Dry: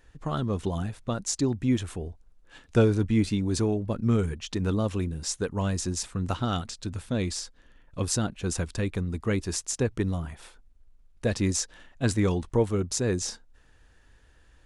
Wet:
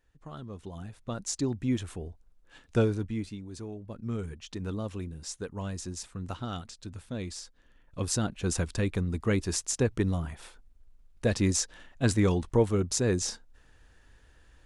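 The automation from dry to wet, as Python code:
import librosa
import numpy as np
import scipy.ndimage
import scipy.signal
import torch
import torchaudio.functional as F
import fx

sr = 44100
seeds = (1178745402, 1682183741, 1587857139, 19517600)

y = fx.gain(x, sr, db=fx.line((0.65, -13.5), (1.22, -4.0), (2.82, -4.0), (3.49, -16.0), (4.37, -8.0), (7.31, -8.0), (8.46, 0.0)))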